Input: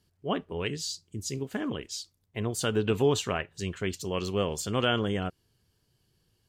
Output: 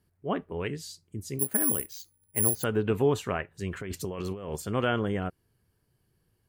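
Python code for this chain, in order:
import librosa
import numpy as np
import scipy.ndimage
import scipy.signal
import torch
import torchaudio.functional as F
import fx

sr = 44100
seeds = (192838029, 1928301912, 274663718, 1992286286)

y = fx.band_shelf(x, sr, hz=4600.0, db=-9.0, octaves=1.7)
y = fx.resample_bad(y, sr, factor=4, down='filtered', up='zero_stuff', at=(1.39, 2.64))
y = fx.over_compress(y, sr, threshold_db=-36.0, ratio=-1.0, at=(3.71, 4.55), fade=0.02)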